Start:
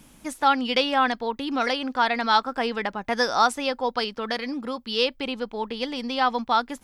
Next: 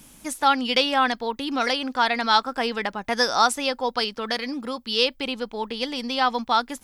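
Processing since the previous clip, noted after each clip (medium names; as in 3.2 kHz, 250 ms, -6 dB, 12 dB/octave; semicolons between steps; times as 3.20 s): treble shelf 4.1 kHz +8 dB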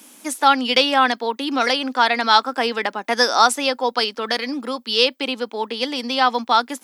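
steep high-pass 230 Hz 36 dB/octave; trim +4.5 dB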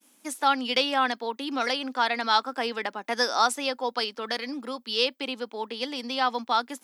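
expander -40 dBFS; trim -8 dB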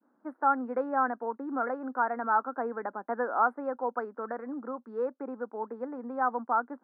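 elliptic low-pass 1.5 kHz, stop band 50 dB; trim -2 dB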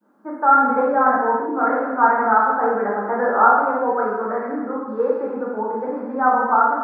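gated-style reverb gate 430 ms falling, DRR -6 dB; trim +6 dB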